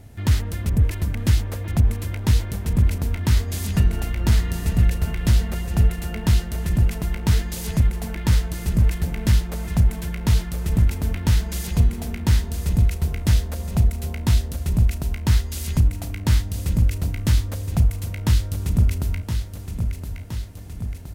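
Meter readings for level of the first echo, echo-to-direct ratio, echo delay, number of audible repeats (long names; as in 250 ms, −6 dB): −8.0 dB, −6.0 dB, 1,018 ms, 6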